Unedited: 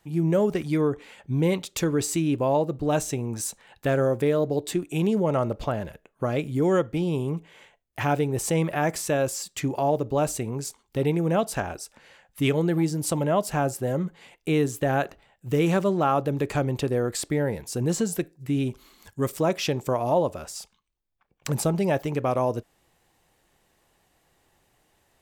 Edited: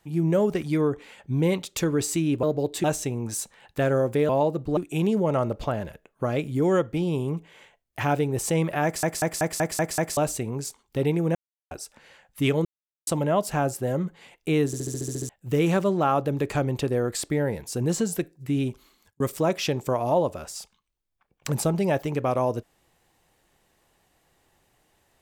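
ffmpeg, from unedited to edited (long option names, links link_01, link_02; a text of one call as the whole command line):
ffmpeg -i in.wav -filter_complex "[0:a]asplit=26[link_01][link_02][link_03][link_04][link_05][link_06][link_07][link_08][link_09][link_10][link_11][link_12][link_13][link_14][link_15][link_16][link_17][link_18][link_19][link_20][link_21][link_22][link_23][link_24][link_25][link_26];[link_01]atrim=end=2.432[link_27];[link_02]atrim=start=4.358:end=4.772[link_28];[link_03]atrim=start=2.908:end=4.362[link_29];[link_04]atrim=start=2.428:end=2.912[link_30];[link_05]atrim=start=4.768:end=9.032[link_31];[link_06]atrim=start=8.838:end=9.032[link_32];[link_07]atrim=start=8.838:end=9.032[link_33];[link_08]atrim=start=8.838:end=9.032[link_34];[link_09]atrim=start=8.838:end=9.032[link_35];[link_10]atrim=start=8.838:end=9.032[link_36];[link_11]atrim=start=8.838:end=9.032[link_37];[link_12]atrim=start=10.168:end=11.35,asetpts=PTS-STARTPTS,afade=type=out:start_time=1.178:duration=0.004:curve=hsin[link_38];[link_13]atrim=start=11.35:end=11.71,asetpts=PTS-STARTPTS,volume=0[link_39];[link_14]atrim=start=11.71:end=12.65,asetpts=PTS-STARTPTS,afade=type=in:duration=0.004:curve=hsin,afade=type=out:start_time=0.936:duration=0.004:curve=hsin[link_40];[link_15]atrim=start=12.65:end=13.07,asetpts=PTS-STARTPTS,volume=0[link_41];[link_16]atrim=start=13.07:end=14.732,asetpts=PTS-STARTPTS,afade=type=in:duration=0.004:curve=hsin[link_42];[link_17]atrim=start=14.658:end=14.732[link_43];[link_18]atrim=start=14.658:end=14.732[link_44];[link_19]atrim=start=14.658:end=14.732[link_45];[link_20]atrim=start=14.658:end=14.732[link_46];[link_21]atrim=start=14.658:end=14.732[link_47];[link_22]atrim=start=14.658:end=14.732[link_48];[link_23]atrim=start=14.658:end=14.732[link_49];[link_24]atrim=start=14.658:end=14.732[link_50];[link_25]atrim=start=15.288:end=19.2,asetpts=PTS-STARTPTS,afade=type=out:start_time=3.362:duration=0.55[link_51];[link_26]atrim=start=19.2,asetpts=PTS-STARTPTS,afade=type=in:duration=0.004:curve=hsin[link_52];[link_27][link_28]acrossfade=duration=0.004:curve1=hsin:curve2=hsin[link_53];[link_53][link_29]acrossfade=duration=0.004:curve1=hsin:curve2=hsin[link_54];[link_54][link_30]acrossfade=duration=0.004:curve1=hsin:curve2=hsin[link_55];[link_55][link_31]acrossfade=duration=0.004:curve1=hsin:curve2=hsin[link_56];[link_56][link_32]acrossfade=duration=0.004:curve1=hsin:curve2=hsin[link_57];[link_57][link_33]acrossfade=duration=0.004:curve1=hsin:curve2=hsin[link_58];[link_58][link_34]acrossfade=duration=0.004:curve1=hsin:curve2=hsin[link_59];[link_59][link_35]acrossfade=duration=0.004:curve1=hsin:curve2=hsin[link_60];[link_60][link_36]acrossfade=duration=0.004:curve1=hsin:curve2=hsin[link_61];[link_61][link_37]acrossfade=duration=0.004:curve1=hsin:curve2=hsin[link_62];[link_38][link_39][link_40][link_41][link_42]concat=n=5:v=0:a=1[link_63];[link_62][link_63]acrossfade=duration=0.004:curve1=hsin:curve2=hsin[link_64];[link_64][link_43]acrossfade=duration=0.004:curve1=hsin:curve2=hsin[link_65];[link_65][link_44]acrossfade=duration=0.004:curve1=hsin:curve2=hsin[link_66];[link_66][link_45]acrossfade=duration=0.004:curve1=hsin:curve2=hsin[link_67];[link_67][link_46]acrossfade=duration=0.004:curve1=hsin:curve2=hsin[link_68];[link_68][link_47]acrossfade=duration=0.004:curve1=hsin:curve2=hsin[link_69];[link_69][link_48]acrossfade=duration=0.004:curve1=hsin:curve2=hsin[link_70];[link_70][link_49]acrossfade=duration=0.004:curve1=hsin:curve2=hsin[link_71];[link_71][link_50]acrossfade=duration=0.004:curve1=hsin:curve2=hsin[link_72];[link_51][link_52]concat=n=2:v=0:a=1[link_73];[link_72][link_73]acrossfade=duration=0.004:curve1=hsin:curve2=hsin" out.wav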